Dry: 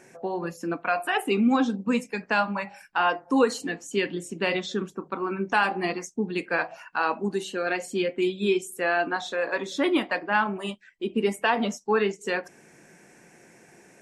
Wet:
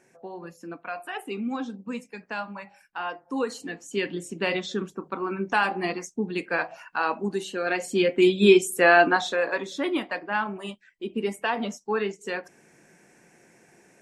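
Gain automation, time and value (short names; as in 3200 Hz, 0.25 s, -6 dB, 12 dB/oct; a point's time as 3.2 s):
3.18 s -9 dB
4.14 s -0.5 dB
7.58 s -0.5 dB
8.38 s +8 dB
9.04 s +8 dB
9.79 s -3.5 dB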